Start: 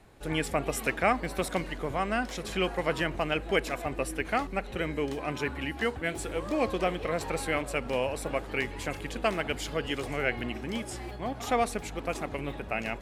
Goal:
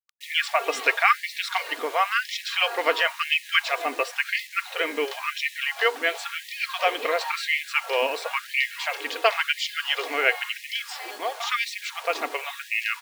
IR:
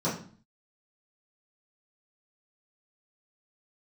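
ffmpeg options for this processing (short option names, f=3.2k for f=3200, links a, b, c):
-af "lowpass=f=4.5k:w=0.5412,lowpass=f=4.5k:w=1.3066,aemphasis=mode=production:type=riaa,aecho=1:1:4.3:0.39,acrusher=bits=7:mix=0:aa=0.000001,equalizer=f=1.1k:t=o:w=0.77:g=2.5,afftfilt=real='re*gte(b*sr/1024,250*pow(1800/250,0.5+0.5*sin(2*PI*0.96*pts/sr)))':imag='im*gte(b*sr/1024,250*pow(1800/250,0.5+0.5*sin(2*PI*0.96*pts/sr)))':win_size=1024:overlap=0.75,volume=6dB"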